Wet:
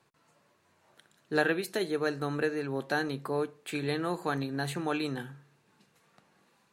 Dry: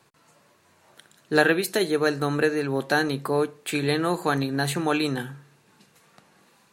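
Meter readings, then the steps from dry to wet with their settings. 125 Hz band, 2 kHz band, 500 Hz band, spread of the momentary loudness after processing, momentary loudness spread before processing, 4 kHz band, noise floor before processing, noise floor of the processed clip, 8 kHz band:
-7.5 dB, -8.0 dB, -7.5 dB, 6 LU, 6 LU, -9.0 dB, -61 dBFS, -69 dBFS, -11.0 dB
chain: high shelf 5300 Hz -5 dB; gain -7.5 dB

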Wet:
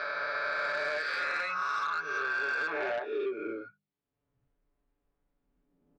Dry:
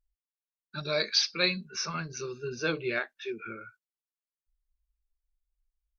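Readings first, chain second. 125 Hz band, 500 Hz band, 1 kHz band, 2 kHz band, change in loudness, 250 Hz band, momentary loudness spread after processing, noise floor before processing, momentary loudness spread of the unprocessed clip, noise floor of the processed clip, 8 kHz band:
under -20 dB, -0.5 dB, +9.0 dB, +5.0 dB, -1.0 dB, -6.0 dB, 6 LU, under -85 dBFS, 14 LU, under -85 dBFS, n/a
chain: spectral swells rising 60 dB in 2.12 s; in parallel at -5 dB: backlash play -39 dBFS; on the sum: tone controls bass -11 dB, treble -2 dB; comb 7 ms, depth 88%; band-pass sweep 1300 Hz -> 200 Hz, 2.58–3.76; compressor 6:1, threshold -29 dBFS, peak gain reduction 6.5 dB; air absorption 200 m; soft clip -29 dBFS, distortion -17 dB; notches 50/100/150/200 Hz; three-band squash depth 100%; gain +4 dB

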